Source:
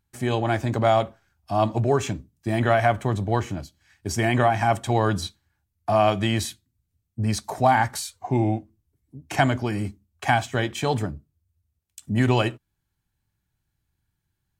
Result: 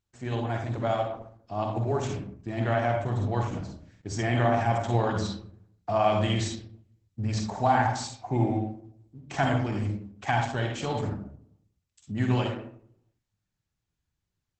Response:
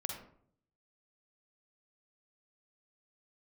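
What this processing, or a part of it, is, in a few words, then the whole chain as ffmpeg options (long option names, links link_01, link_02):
speakerphone in a meeting room: -filter_complex "[1:a]atrim=start_sample=2205[link_01];[0:a][link_01]afir=irnorm=-1:irlink=0,dynaudnorm=framelen=220:gausssize=31:maxgain=6dB,volume=-7.5dB" -ar 48000 -c:a libopus -b:a 12k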